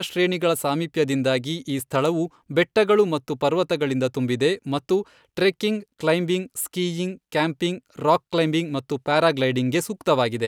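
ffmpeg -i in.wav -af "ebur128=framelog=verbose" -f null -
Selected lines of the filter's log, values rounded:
Integrated loudness:
  I:         -22.8 LUFS
  Threshold: -32.9 LUFS
Loudness range:
  LRA:         2.0 LU
  Threshold: -43.0 LUFS
  LRA low:   -24.2 LUFS
  LRA high:  -22.2 LUFS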